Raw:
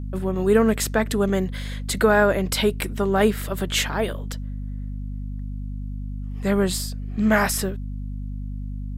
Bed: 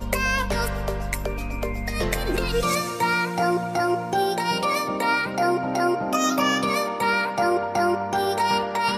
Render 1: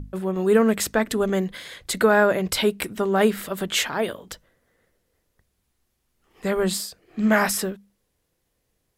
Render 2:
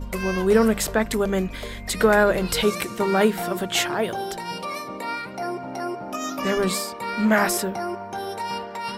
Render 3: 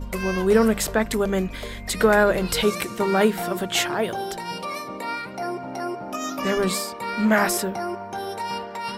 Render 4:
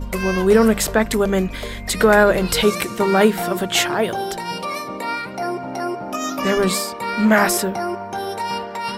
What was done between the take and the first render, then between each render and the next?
mains-hum notches 50/100/150/200/250 Hz
mix in bed −7.5 dB
no processing that can be heard
level +4.5 dB; brickwall limiter −2 dBFS, peak gain reduction 2 dB

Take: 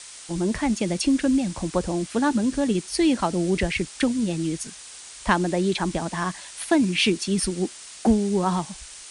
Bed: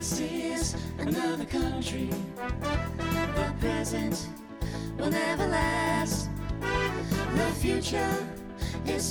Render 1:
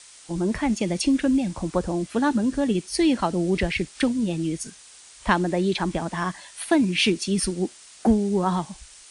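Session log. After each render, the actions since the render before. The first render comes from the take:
noise reduction from a noise print 6 dB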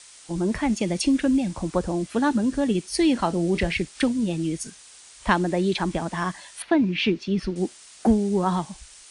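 0:03.13–0:03.75: double-tracking delay 30 ms −13.5 dB
0:06.62–0:07.56: high-frequency loss of the air 230 metres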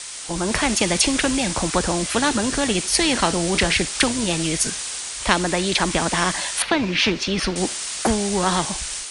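automatic gain control gain up to 6 dB
every bin compressed towards the loudest bin 2 to 1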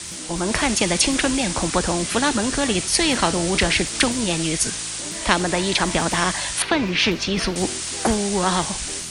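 mix in bed −9 dB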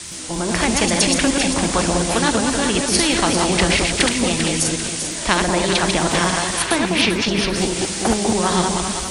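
delay that plays each chunk backwards 119 ms, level −3.5 dB
on a send: delay that swaps between a low-pass and a high-pass 197 ms, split 1,000 Hz, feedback 59%, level −3.5 dB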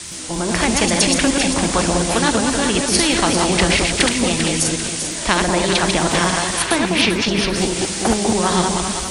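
level +1 dB
brickwall limiter −2 dBFS, peak gain reduction 1 dB

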